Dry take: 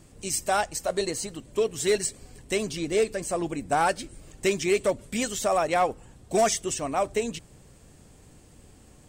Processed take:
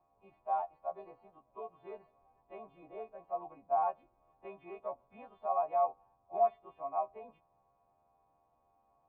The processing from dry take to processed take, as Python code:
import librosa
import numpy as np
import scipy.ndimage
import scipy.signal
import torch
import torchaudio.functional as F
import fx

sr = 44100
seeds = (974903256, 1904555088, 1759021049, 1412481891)

y = fx.freq_snap(x, sr, grid_st=2)
y = fx.formant_cascade(y, sr, vowel='a')